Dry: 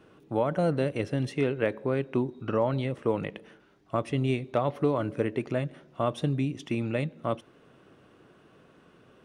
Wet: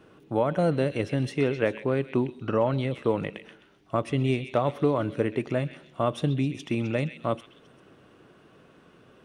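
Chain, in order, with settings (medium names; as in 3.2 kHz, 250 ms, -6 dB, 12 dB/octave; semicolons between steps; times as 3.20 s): repeats whose band climbs or falls 130 ms, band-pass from 2.8 kHz, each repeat 0.7 oct, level -7 dB; trim +2 dB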